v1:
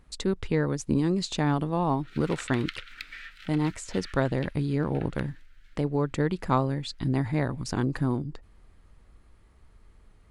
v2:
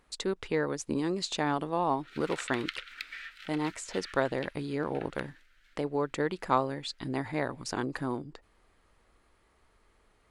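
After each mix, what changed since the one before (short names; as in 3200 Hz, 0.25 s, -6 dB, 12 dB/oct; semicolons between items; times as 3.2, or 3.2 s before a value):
speech: add tone controls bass -14 dB, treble -1 dB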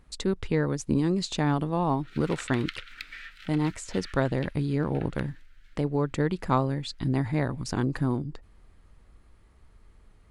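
speech: add tone controls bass +14 dB, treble +1 dB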